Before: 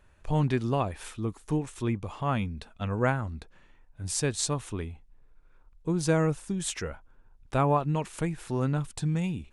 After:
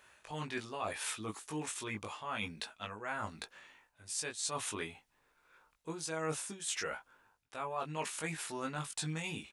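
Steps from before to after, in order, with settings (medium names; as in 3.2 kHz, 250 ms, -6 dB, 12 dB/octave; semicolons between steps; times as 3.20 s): high-pass 1.5 kHz 6 dB/octave; reverse; compression 12:1, threshold -44 dBFS, peak gain reduction 18.5 dB; reverse; doubling 19 ms -3 dB; trim +7.5 dB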